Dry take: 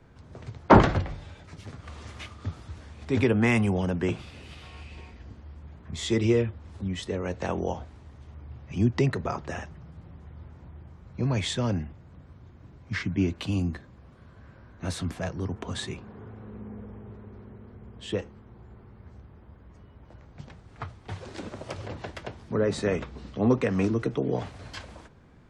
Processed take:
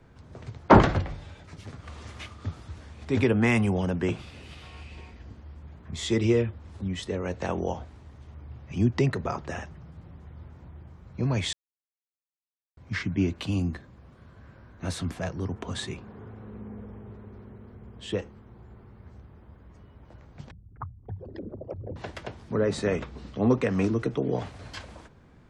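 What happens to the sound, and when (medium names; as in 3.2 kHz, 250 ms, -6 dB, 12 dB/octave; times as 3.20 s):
11.53–12.77 s: mute
20.51–21.96 s: resonances exaggerated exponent 3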